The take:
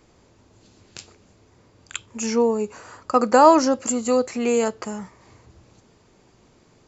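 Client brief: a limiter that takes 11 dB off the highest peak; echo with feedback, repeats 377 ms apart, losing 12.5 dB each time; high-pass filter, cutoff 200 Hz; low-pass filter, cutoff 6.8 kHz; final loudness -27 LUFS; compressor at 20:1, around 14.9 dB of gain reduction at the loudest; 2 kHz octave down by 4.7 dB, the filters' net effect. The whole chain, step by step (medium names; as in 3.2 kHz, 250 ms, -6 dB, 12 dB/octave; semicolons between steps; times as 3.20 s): high-pass 200 Hz; low-pass 6.8 kHz; peaking EQ 2 kHz -7 dB; compression 20:1, threshold -23 dBFS; peak limiter -22 dBFS; feedback delay 377 ms, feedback 24%, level -12.5 dB; trim +5 dB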